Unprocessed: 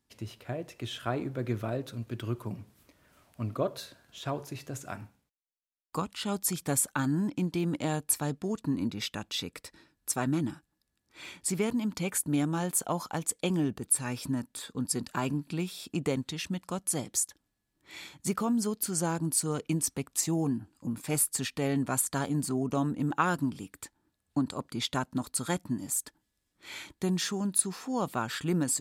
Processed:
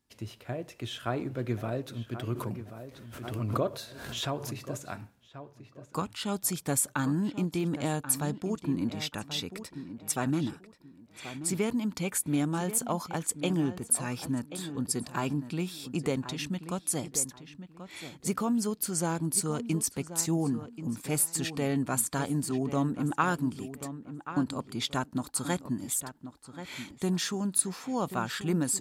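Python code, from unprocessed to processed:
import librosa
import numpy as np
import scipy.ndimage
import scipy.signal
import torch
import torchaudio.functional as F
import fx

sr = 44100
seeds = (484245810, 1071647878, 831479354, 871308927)

y = fx.echo_filtered(x, sr, ms=1083, feedback_pct=25, hz=2800.0, wet_db=-11.5)
y = fx.pre_swell(y, sr, db_per_s=47.0, at=(2.33, 4.59))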